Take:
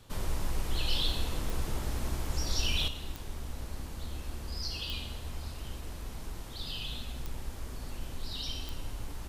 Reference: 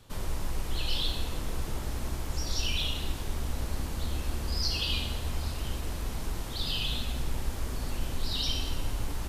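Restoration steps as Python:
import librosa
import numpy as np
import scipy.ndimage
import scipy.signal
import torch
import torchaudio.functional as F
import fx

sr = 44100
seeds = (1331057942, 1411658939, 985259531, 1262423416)

y = fx.fix_declick_ar(x, sr, threshold=10.0)
y = fx.gain(y, sr, db=fx.steps((0.0, 0.0), (2.88, 7.0)))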